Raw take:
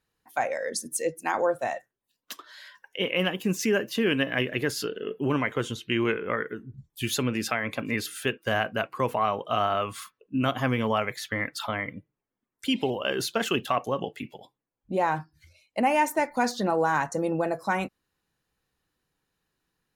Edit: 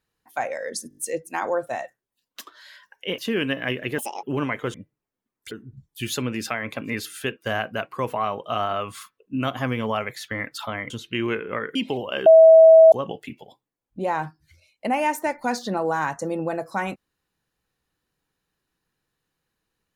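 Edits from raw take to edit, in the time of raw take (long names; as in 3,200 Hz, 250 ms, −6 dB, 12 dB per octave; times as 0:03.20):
0:00.89: stutter 0.02 s, 5 plays
0:03.10–0:03.88: remove
0:04.68–0:05.16: play speed 191%
0:05.67–0:06.52: swap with 0:11.91–0:12.68
0:13.19–0:13.85: beep over 647 Hz −6.5 dBFS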